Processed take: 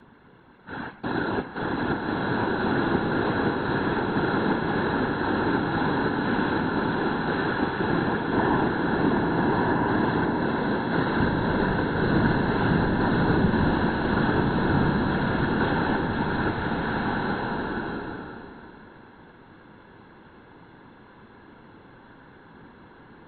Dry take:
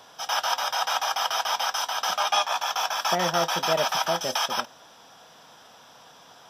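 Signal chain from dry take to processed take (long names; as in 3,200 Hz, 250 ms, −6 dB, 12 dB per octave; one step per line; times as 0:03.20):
change of speed 0.279×
random phases in short frames
slow-attack reverb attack 1,430 ms, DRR −2.5 dB
level −2.5 dB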